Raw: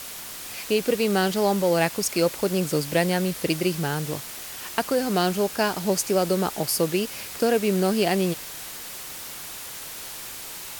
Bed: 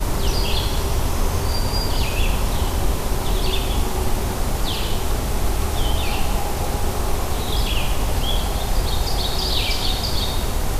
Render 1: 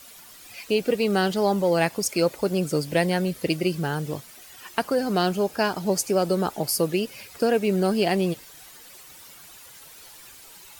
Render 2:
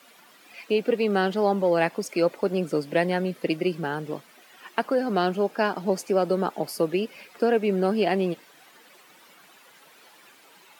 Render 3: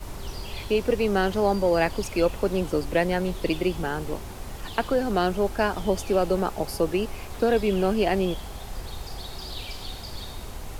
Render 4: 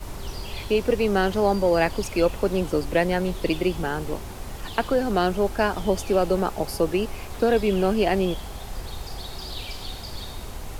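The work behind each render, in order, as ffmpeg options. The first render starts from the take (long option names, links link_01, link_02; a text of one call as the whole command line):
ffmpeg -i in.wav -af "afftdn=noise_reduction=12:noise_floor=-37" out.wav
ffmpeg -i in.wav -af "highpass=frequency=180:width=0.5412,highpass=frequency=180:width=1.3066,bass=frequency=250:gain=-1,treble=frequency=4000:gain=-13" out.wav
ffmpeg -i in.wav -i bed.wav -filter_complex "[1:a]volume=-15dB[link_01];[0:a][link_01]amix=inputs=2:normalize=0" out.wav
ffmpeg -i in.wav -af "volume=1.5dB" out.wav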